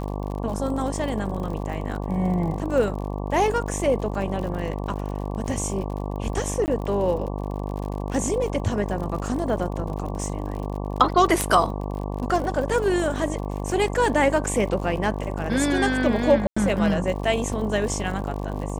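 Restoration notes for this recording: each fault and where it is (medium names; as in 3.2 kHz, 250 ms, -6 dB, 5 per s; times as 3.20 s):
buzz 50 Hz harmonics 23 -29 dBFS
crackle 58 per s -32 dBFS
6.66–6.68 s: dropout 19 ms
11.41 s: pop -7 dBFS
16.47–16.57 s: dropout 95 ms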